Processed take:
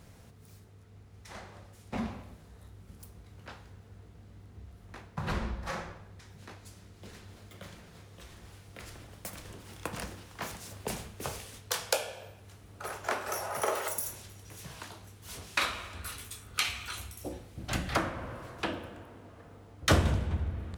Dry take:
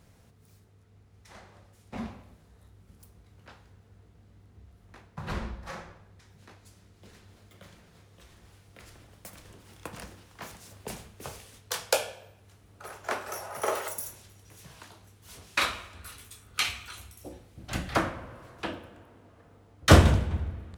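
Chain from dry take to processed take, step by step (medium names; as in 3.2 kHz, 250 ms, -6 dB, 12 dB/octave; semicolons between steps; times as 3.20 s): compression 2:1, threshold -36 dBFS, peak gain reduction 14.5 dB; trim +4.5 dB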